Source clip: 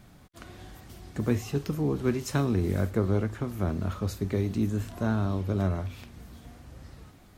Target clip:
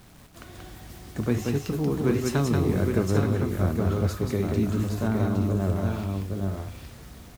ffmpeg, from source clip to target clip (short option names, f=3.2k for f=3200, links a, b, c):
-filter_complex "[0:a]asettb=1/sr,asplit=3[a][b][c];[a]atrim=end=5.084[d];[b]atrim=start=5.08:end=5.76,asetpts=PTS-STARTPTS,afade=t=in:d=0.004:c=qsin,afade=t=out:st=0.676:d=0.004:c=qsin,highshelf=f=2.1k:g=-11.5[e];[c]atrim=start=5.756[f];[d][e]acrossfade=d=0.004:c1=hsin:c2=qsin[g];[g][f]acrossfade=d=0.004:c1=qsin:c2=hsin,acrusher=bits=8:mix=0:aa=0.000001,aecho=1:1:183|814|875:0.668|0.596|0.282,volume=1dB"